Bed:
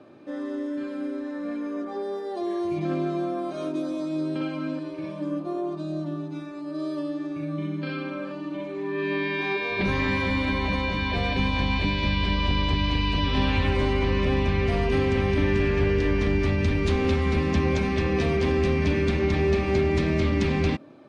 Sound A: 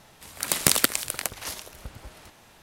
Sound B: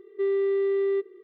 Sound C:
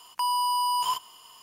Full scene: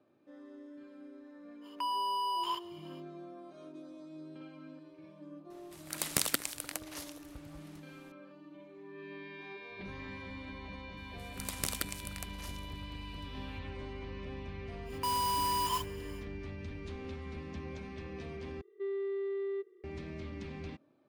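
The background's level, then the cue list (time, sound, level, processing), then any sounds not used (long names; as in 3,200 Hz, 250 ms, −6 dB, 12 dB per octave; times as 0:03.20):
bed −20 dB
0:01.61: mix in C −8 dB, fades 0.05 s + high shelf with overshoot 5,000 Hz −9 dB, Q 1.5
0:05.50: mix in A −10.5 dB
0:10.97: mix in A −15.5 dB
0:14.84: mix in C −6.5 dB, fades 0.10 s + noise that follows the level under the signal 11 dB
0:18.61: overwrite with B −11.5 dB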